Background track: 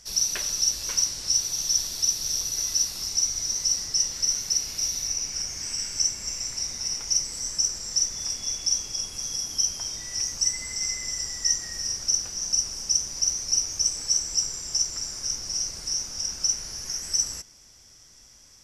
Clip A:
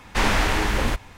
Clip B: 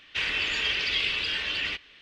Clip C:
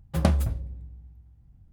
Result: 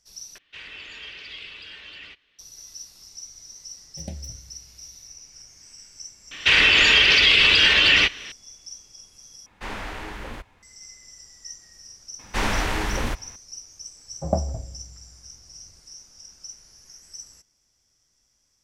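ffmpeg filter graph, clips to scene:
ffmpeg -i bed.wav -i cue0.wav -i cue1.wav -i cue2.wav -filter_complex "[2:a]asplit=2[link_01][link_02];[3:a]asplit=2[link_03][link_04];[1:a]asplit=2[link_05][link_06];[0:a]volume=-16dB[link_07];[link_03]asuperstop=centerf=1200:order=4:qfactor=1[link_08];[link_02]alimiter=level_in=20.5dB:limit=-1dB:release=50:level=0:latency=1[link_09];[link_05]bass=frequency=250:gain=-3,treble=frequency=4000:gain=-5[link_10];[link_04]lowpass=frequency=690:width_type=q:width=4.5[link_11];[link_07]asplit=3[link_12][link_13][link_14];[link_12]atrim=end=0.384[link_15];[link_01]atrim=end=2.01,asetpts=PTS-STARTPTS,volume=-12.5dB[link_16];[link_13]atrim=start=2.386:end=9.464[link_17];[link_10]atrim=end=1.17,asetpts=PTS-STARTPTS,volume=-12dB[link_18];[link_14]atrim=start=10.626[link_19];[link_08]atrim=end=1.72,asetpts=PTS-STARTPTS,volume=-14dB,afade=type=in:duration=0.004:curve=hsin,afade=type=out:start_time=1.716:duration=0.004:curve=hsin,adelay=3830[link_20];[link_09]atrim=end=2.01,asetpts=PTS-STARTPTS,volume=-5.5dB,afade=type=in:duration=0.004:curve=hsin,afade=type=out:start_time=2.006:duration=0.004:curve=hsin,adelay=6310[link_21];[link_06]atrim=end=1.17,asetpts=PTS-STARTPTS,volume=-3.5dB,afade=type=in:duration=0.004:curve=hsin,afade=type=out:start_time=1.166:duration=0.004:curve=hsin,adelay=12190[link_22];[link_11]atrim=end=1.72,asetpts=PTS-STARTPTS,volume=-5dB,afade=type=in:duration=0.004:curve=hsin,afade=type=out:start_time=1.716:duration=0.004:curve=hsin,adelay=14080[link_23];[link_15][link_16]acrossfade=duration=0.004:curve1=hsin:curve2=hsin[link_24];[link_24][link_17]acrossfade=duration=0.004:curve1=hsin:curve2=hsin[link_25];[link_25][link_18]acrossfade=duration=0.004:curve1=hsin:curve2=hsin[link_26];[link_26][link_19]acrossfade=duration=0.004:curve1=hsin:curve2=hsin[link_27];[link_27][link_20][link_21][link_22][link_23]amix=inputs=5:normalize=0" out.wav

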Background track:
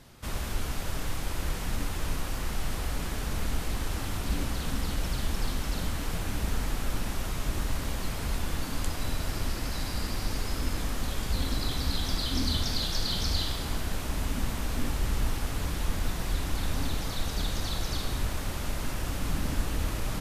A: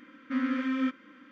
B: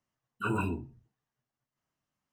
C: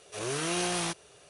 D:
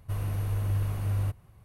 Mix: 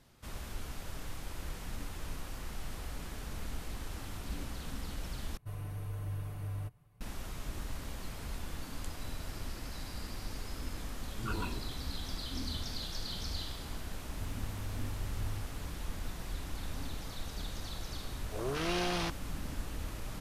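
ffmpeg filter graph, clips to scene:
ffmpeg -i bed.wav -i cue0.wav -i cue1.wav -i cue2.wav -i cue3.wav -filter_complex "[4:a]asplit=2[link_01][link_02];[0:a]volume=-10dB[link_03];[link_01]aecho=1:1:6.8:0.62[link_04];[2:a]acrossover=split=300[link_05][link_06];[link_06]adelay=100[link_07];[link_05][link_07]amix=inputs=2:normalize=0[link_08];[link_02]aeval=exprs='val(0)+0.5*0.00398*sgn(val(0))':channel_layout=same[link_09];[3:a]afwtdn=0.0141[link_10];[link_03]asplit=2[link_11][link_12];[link_11]atrim=end=5.374[link_13];[link_04]atrim=end=1.64,asetpts=PTS-STARTPTS,volume=-10dB[link_14];[link_12]atrim=start=7.006[link_15];[link_08]atrim=end=2.32,asetpts=PTS-STARTPTS,volume=-7dB,afade=type=in:duration=0.004:curve=hsin,afade=type=out:start_time=2.316:duration=0.004:curve=hsin,adelay=473634S[link_16];[link_09]atrim=end=1.64,asetpts=PTS-STARTPTS,volume=-14dB,afade=type=in:duration=0.004:curve=hsin,afade=type=out:start_time=1.636:duration=0.004:curve=hsin,adelay=14110[link_17];[link_10]atrim=end=1.29,asetpts=PTS-STARTPTS,volume=-2dB,afade=type=in:duration=0.004:curve=hsin,afade=type=out:start_time=1.286:duration=0.004:curve=hsin,adelay=18180[link_18];[link_13][link_14]acrossfade=duration=0.004:curve1=hsin:curve2=hsin[link_19];[link_19][link_15]acrossfade=duration=0.004:curve1=hsin:curve2=hsin[link_20];[link_20][link_16][link_17][link_18]amix=inputs=4:normalize=0" out.wav

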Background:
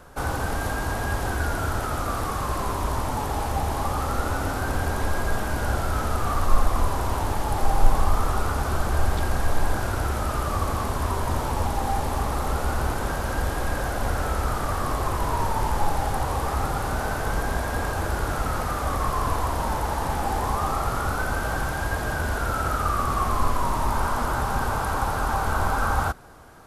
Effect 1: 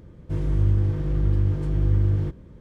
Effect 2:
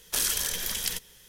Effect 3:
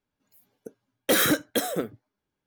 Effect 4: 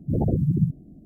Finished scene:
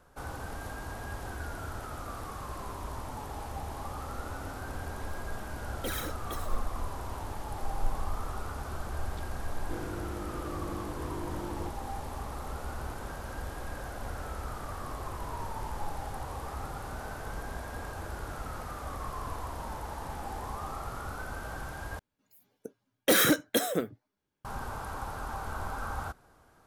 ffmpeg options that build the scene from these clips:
ffmpeg -i bed.wav -i cue0.wav -i cue1.wav -i cue2.wav -filter_complex "[3:a]asplit=2[link_01][link_02];[0:a]volume=-13dB[link_03];[link_01]aphaser=in_gain=1:out_gain=1:delay=2.8:decay=0.59:speed=1:type=sinusoidal[link_04];[1:a]highpass=frequency=230:width=0.5412,highpass=frequency=230:width=1.3066[link_05];[link_03]asplit=2[link_06][link_07];[link_06]atrim=end=21.994[link_08];[link_02]atrim=end=2.46,asetpts=PTS-STARTPTS,volume=-1.5dB[link_09];[link_07]atrim=start=24.446[link_10];[link_04]atrim=end=2.46,asetpts=PTS-STARTPTS,volume=-17dB,afade=type=in:duration=0.004:curve=hsin,afade=type=out:start_time=2.456:duration=0.004:curve=hsin,adelay=4750[link_11];[link_05]atrim=end=2.6,asetpts=PTS-STARTPTS,volume=-4.5dB,afade=type=in:duration=0.004:curve=hsin,afade=type=out:start_time=2.596:duration=0.004:curve=hsin,adelay=9390[link_12];[link_08][link_09]acrossfade=duration=0.004:curve1=hsin:curve2=hsin[link_13];[link_13][link_10]acrossfade=duration=0.004:curve1=hsin:curve2=hsin[link_14];[link_14][link_11][link_12]amix=inputs=3:normalize=0" out.wav

